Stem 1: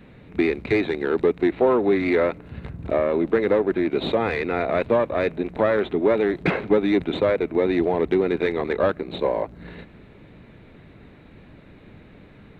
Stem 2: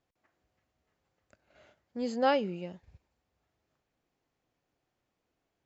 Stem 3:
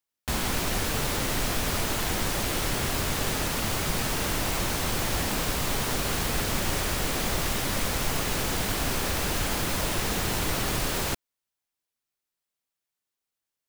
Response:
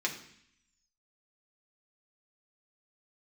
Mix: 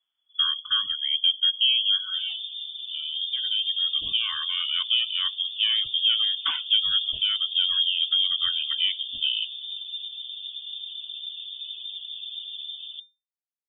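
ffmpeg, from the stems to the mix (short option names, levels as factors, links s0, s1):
-filter_complex "[0:a]highpass=170,highshelf=f=2200:g=7.5,volume=0.596,asplit=2[s0][s1];[s1]volume=0.2[s2];[1:a]volume=0.398,asplit=2[s3][s4];[2:a]adelay=1850,volume=0.473[s5];[s4]apad=whole_len=555576[s6];[s0][s6]sidechaincompress=threshold=0.00316:ratio=8:attack=16:release=1180[s7];[3:a]atrim=start_sample=2205[s8];[s2][s8]afir=irnorm=-1:irlink=0[s9];[s7][s3][s5][s9]amix=inputs=4:normalize=0,equalizer=f=1700:w=1:g=-10,afftdn=nr=29:nf=-34,lowpass=f=3100:t=q:w=0.5098,lowpass=f=3100:t=q:w=0.6013,lowpass=f=3100:t=q:w=0.9,lowpass=f=3100:t=q:w=2.563,afreqshift=-3600"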